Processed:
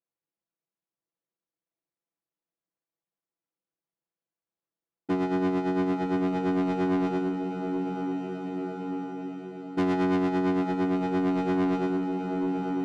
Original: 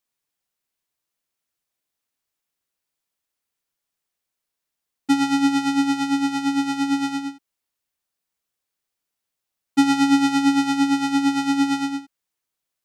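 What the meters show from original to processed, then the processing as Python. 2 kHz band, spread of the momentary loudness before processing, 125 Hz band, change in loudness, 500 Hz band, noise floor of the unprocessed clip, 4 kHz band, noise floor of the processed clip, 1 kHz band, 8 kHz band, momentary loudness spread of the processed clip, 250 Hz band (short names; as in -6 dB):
-9.0 dB, 9 LU, +10.0 dB, -7.5 dB, n/a, -83 dBFS, -17.0 dB, under -85 dBFS, -6.5 dB, under -20 dB, 8 LU, -6.0 dB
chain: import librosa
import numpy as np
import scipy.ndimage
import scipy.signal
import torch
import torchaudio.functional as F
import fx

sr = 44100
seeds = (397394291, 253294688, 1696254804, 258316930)

p1 = fx.cycle_switch(x, sr, every=3, mode='muted')
p2 = fx.bandpass_q(p1, sr, hz=310.0, q=0.65)
p3 = p2 + 0.97 * np.pad(p2, (int(6.0 * sr / 1000.0), 0))[:len(p2)]
p4 = p3 + fx.echo_diffused(p3, sr, ms=1017, feedback_pct=65, wet_db=-11.0, dry=0)
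p5 = fx.rider(p4, sr, range_db=4, speed_s=2.0)
y = 10.0 ** (-22.0 / 20.0) * np.tanh(p5 / 10.0 ** (-22.0 / 20.0))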